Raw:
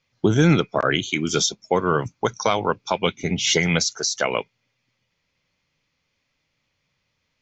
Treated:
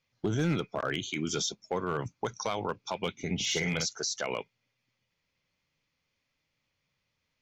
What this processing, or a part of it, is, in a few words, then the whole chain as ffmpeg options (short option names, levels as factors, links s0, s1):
clipper into limiter: -filter_complex "[0:a]asettb=1/sr,asplit=3[s0][s1][s2];[s0]atrim=end=3.354[s3];[s1]atrim=start=3.35:end=3.86,asetpts=PTS-STARTPTS,afade=t=in:d=0.004:c=qsin,afade=t=out:st=0.506:d=0.004:c=qsin,asplit=2[s4][s5];[s5]adelay=50,volume=0.562[s6];[s4][s6]amix=inputs=2:normalize=0,atrim=end_sample=22491[s7];[s2]atrim=start=3.856[s8];[s3][s7]acrossfade=d=0.004:c1=hsin:c2=qsin[s9];[s9][s8]acrossfade=d=0.004:c1=qsin:c2=hsin,asoftclip=type=hard:threshold=0.316,alimiter=limit=0.178:level=0:latency=1:release=36,volume=0.447"